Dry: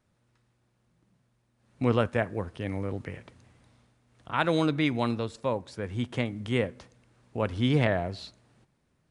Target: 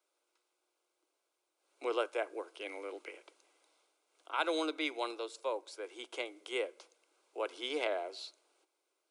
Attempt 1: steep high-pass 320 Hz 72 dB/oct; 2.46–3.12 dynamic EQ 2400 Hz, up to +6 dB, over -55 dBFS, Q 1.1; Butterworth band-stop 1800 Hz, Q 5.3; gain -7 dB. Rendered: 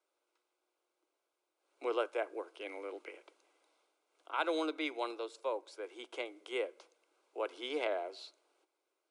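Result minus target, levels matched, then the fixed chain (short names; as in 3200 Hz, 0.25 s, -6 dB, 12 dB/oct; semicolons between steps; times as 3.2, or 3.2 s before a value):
8000 Hz band -5.5 dB
steep high-pass 320 Hz 72 dB/oct; 2.46–3.12 dynamic EQ 2400 Hz, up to +6 dB, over -55 dBFS, Q 1.1; Butterworth band-stop 1800 Hz, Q 5.3; high shelf 3500 Hz +7.5 dB; gain -7 dB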